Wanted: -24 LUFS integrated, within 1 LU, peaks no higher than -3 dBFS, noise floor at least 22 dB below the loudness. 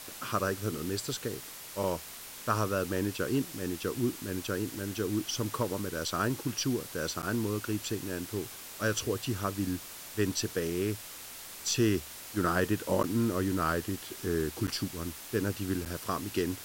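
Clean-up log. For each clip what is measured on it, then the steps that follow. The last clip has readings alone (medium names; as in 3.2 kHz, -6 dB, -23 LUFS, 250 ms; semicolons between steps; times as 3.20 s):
dropouts 4; longest dropout 8.8 ms; noise floor -45 dBFS; noise floor target -55 dBFS; loudness -32.5 LUFS; peak level -12.0 dBFS; loudness target -24.0 LUFS
-> interpolate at 7.22/13.03/14.67/15.85 s, 8.8 ms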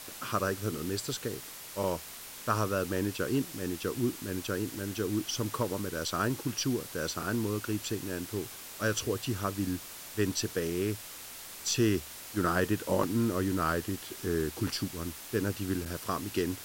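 dropouts 0; noise floor -45 dBFS; noise floor target -55 dBFS
-> noise reduction 10 dB, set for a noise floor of -45 dBFS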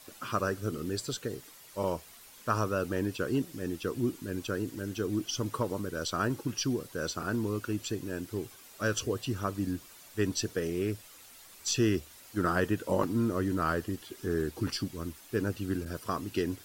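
noise floor -53 dBFS; noise floor target -55 dBFS
-> noise reduction 6 dB, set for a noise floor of -53 dBFS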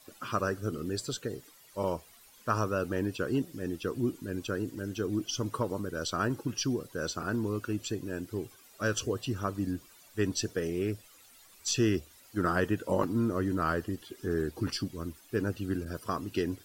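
noise floor -58 dBFS; loudness -33.0 LUFS; peak level -12.5 dBFS; loudness target -24.0 LUFS
-> trim +9 dB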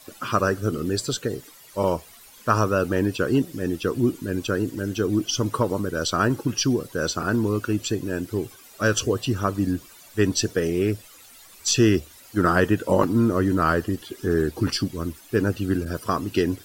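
loudness -24.0 LUFS; peak level -3.5 dBFS; noise floor -49 dBFS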